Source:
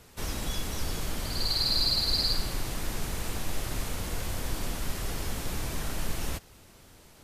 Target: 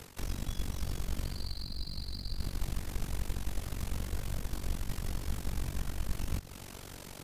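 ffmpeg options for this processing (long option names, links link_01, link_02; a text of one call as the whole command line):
ffmpeg -i in.wav -filter_complex "[0:a]areverse,acompressor=threshold=-43dB:ratio=5,areverse,aeval=exprs='0.0237*(cos(1*acos(clip(val(0)/0.0237,-1,1)))-cos(1*PI/2))+0.00119*(cos(7*acos(clip(val(0)/0.0237,-1,1)))-cos(7*PI/2))':channel_layout=same,tremolo=f=47:d=0.919,acrossover=split=250[link_01][link_02];[link_02]acompressor=threshold=-59dB:ratio=6[link_03];[link_01][link_03]amix=inputs=2:normalize=0,volume=15.5dB" out.wav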